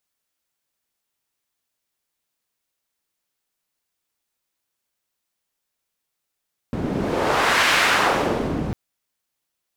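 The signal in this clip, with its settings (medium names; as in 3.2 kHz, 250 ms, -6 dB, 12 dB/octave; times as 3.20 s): wind-like swept noise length 2.00 s, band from 190 Hz, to 1.9 kHz, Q 1, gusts 1, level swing 7.5 dB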